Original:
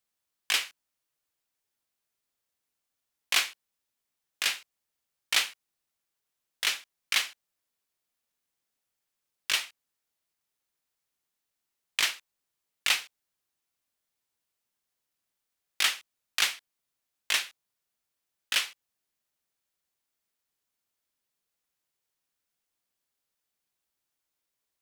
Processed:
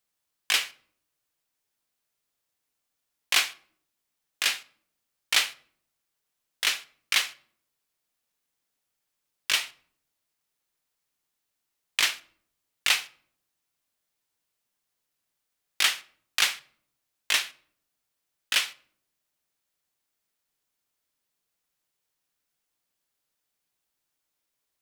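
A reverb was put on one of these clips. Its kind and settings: simulated room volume 930 m³, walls furnished, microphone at 0.44 m; trim +2.5 dB

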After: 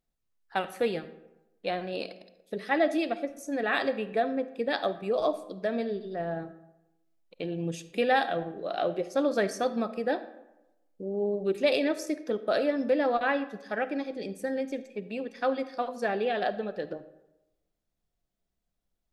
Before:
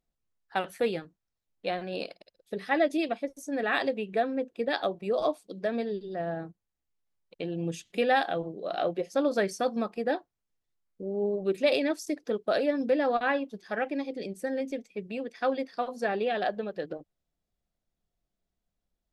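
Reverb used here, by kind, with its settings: algorithmic reverb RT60 0.98 s, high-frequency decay 0.55×, pre-delay 10 ms, DRR 13 dB

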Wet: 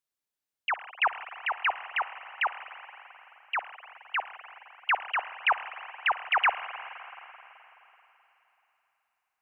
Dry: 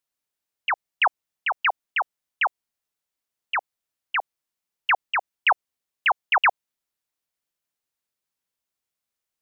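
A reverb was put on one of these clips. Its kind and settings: spring tank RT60 3.5 s, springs 42/53 ms, chirp 35 ms, DRR 10.5 dB; trim -5 dB

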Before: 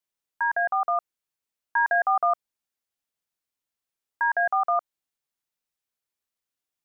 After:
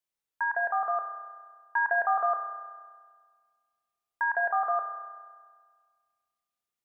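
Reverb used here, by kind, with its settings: spring tank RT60 1.7 s, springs 32 ms, chirp 75 ms, DRR 4 dB; trim -3.5 dB

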